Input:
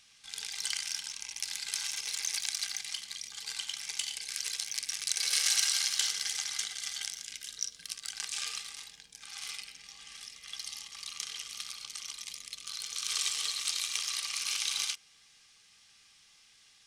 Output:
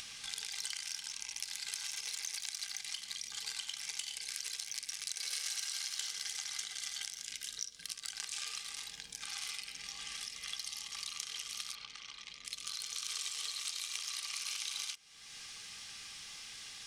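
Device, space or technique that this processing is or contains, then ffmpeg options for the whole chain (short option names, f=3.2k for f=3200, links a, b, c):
upward and downward compression: -filter_complex "[0:a]acompressor=mode=upward:threshold=-46dB:ratio=2.5,acompressor=threshold=-45dB:ratio=4,asettb=1/sr,asplit=3[a][b][c];[a]atrim=end=11.754[d];[b]atrim=start=11.75:end=12.45,asetpts=PTS-STARTPTS,afade=t=in:d=0.004:c=qsin,afade=t=out:st=0.696:d=0.004:c=qsin,lowpass=3.3k[e];[c]atrim=start=12.446[f];[d][e]acrossfade=d=0.004:c1=hsin:c2=qsin[g];[g][f]acrossfade=d=0.004:c1=qsin:c2=hsin,volume=6dB"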